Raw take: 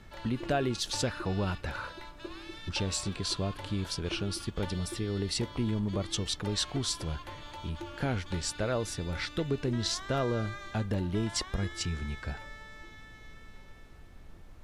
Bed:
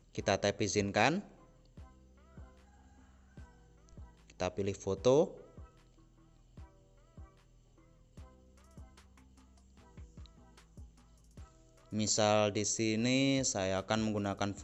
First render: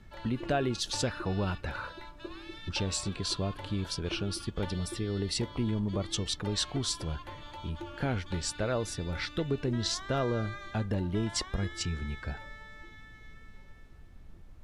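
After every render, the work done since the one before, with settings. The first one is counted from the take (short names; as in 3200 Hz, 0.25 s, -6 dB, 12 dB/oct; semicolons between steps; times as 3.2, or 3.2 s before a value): denoiser 6 dB, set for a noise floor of -50 dBFS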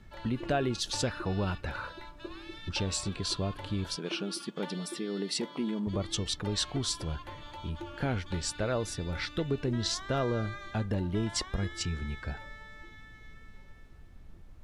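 3.96–5.87 brick-wall FIR high-pass 150 Hz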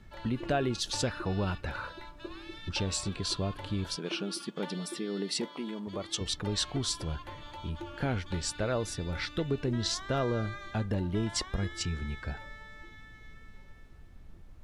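5.48–6.21 HPF 390 Hz 6 dB/oct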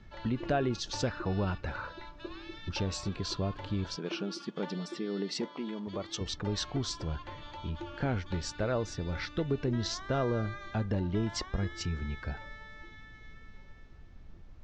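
steep low-pass 6500 Hz 36 dB/oct; dynamic EQ 3500 Hz, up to -5 dB, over -49 dBFS, Q 0.92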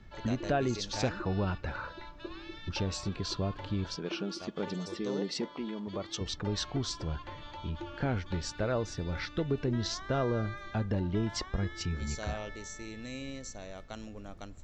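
add bed -11.5 dB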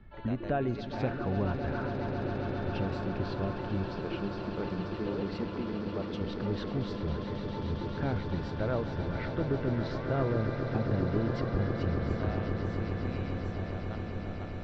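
air absorption 400 m; swelling echo 0.135 s, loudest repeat 8, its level -11 dB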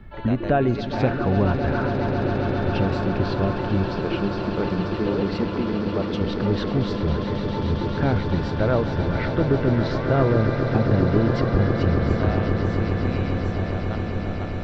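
gain +10.5 dB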